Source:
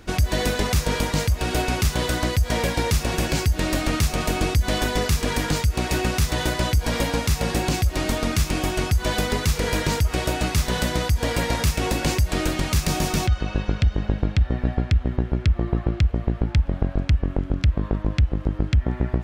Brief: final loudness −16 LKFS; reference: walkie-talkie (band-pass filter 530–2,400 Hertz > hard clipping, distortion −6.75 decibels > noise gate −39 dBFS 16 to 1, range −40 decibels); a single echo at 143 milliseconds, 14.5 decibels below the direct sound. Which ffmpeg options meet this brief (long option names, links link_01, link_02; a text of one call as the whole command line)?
ffmpeg -i in.wav -af "highpass=530,lowpass=2400,aecho=1:1:143:0.188,asoftclip=type=hard:threshold=-32.5dB,agate=range=-40dB:threshold=-39dB:ratio=16,volume=19.5dB" out.wav